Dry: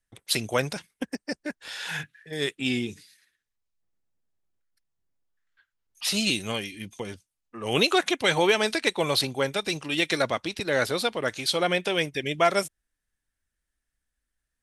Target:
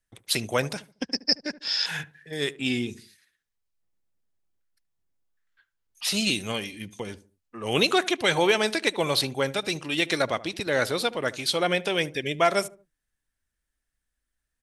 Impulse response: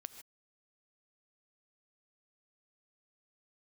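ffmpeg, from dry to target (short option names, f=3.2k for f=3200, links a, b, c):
-filter_complex "[0:a]asettb=1/sr,asplit=3[a][b][c];[a]atrim=end=0.924[d];[b]atrim=start=0.92:end=1.86,asetpts=PTS-STARTPTS,afade=t=in:d=0.004:c=qsin,afade=t=out:st=0.936:d=0.004:c=qsin,lowpass=f=5.1k:t=q:w=12[e];[c]atrim=start=1.856[f];[d][e]acrossfade=d=0.004:c1=hsin:c2=qsin[g];[g][f]acrossfade=d=0.004:c1=qsin:c2=hsin,asplit=2[h][i];[i]adelay=74,lowpass=f=900:p=1,volume=-16dB,asplit=2[j][k];[k]adelay=74,lowpass=f=900:p=1,volume=0.39,asplit=2[l][m];[m]adelay=74,lowpass=f=900:p=1,volume=0.39[n];[j][l][n]amix=inputs=3:normalize=0[o];[h][o]amix=inputs=2:normalize=0"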